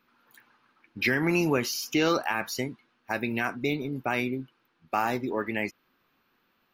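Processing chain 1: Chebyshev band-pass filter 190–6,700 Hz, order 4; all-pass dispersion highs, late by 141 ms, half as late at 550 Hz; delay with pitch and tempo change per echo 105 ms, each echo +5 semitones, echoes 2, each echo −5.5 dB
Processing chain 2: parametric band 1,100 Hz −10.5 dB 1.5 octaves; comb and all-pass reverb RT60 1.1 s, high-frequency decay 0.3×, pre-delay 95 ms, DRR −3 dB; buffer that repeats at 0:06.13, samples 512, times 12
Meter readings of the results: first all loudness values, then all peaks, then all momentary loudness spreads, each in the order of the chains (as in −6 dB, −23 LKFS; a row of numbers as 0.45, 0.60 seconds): −28.5, −26.5 LKFS; −12.5, −11.5 dBFS; 9, 12 LU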